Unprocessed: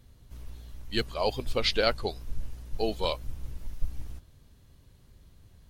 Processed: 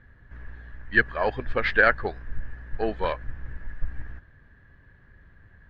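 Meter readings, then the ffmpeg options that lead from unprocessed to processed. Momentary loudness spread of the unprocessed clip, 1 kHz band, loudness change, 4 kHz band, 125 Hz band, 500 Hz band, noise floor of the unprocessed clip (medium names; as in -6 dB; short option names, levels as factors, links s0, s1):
20 LU, +6.0 dB, +6.5 dB, -9.5 dB, +1.5 dB, +2.5 dB, -58 dBFS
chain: -af "aeval=exprs='0.316*(cos(1*acos(clip(val(0)/0.316,-1,1)))-cos(1*PI/2))+0.00631*(cos(8*acos(clip(val(0)/0.316,-1,1)))-cos(8*PI/2))':c=same,lowpass=f=1700:t=q:w=14,volume=1.19"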